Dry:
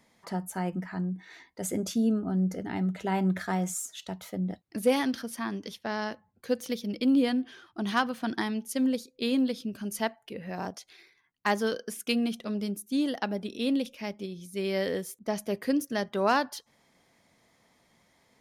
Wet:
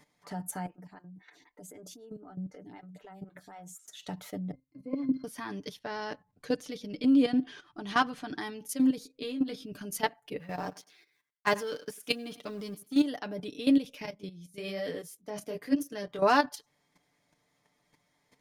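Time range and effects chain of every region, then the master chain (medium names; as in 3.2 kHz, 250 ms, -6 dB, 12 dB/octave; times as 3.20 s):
0.66–3.88 s: compression 2:1, threshold -46 dBFS + lamp-driven phase shifter 3.9 Hz
4.51–5.24 s: bass shelf 200 Hz +6 dB + pitch-class resonator C, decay 0.18 s
5.79–8.39 s: low-pass 9.2 kHz + bass shelf 66 Hz +7.5 dB
8.99–9.65 s: treble shelf 5.1 kHz -4.5 dB + compression 12:1, threshold -27 dBFS + doubling 19 ms -7 dB
10.39–13.04 s: companding laws mixed up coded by A + bass shelf 60 Hz -9 dB + thinning echo 98 ms, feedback 20%, high-pass 210 Hz, level -18 dB
14.05–16.19 s: chorus 1.1 Hz, delay 18 ms, depth 6 ms + three bands expanded up and down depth 40%
whole clip: level held to a coarse grid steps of 13 dB; comb 6.8 ms, depth 64%; trim +2.5 dB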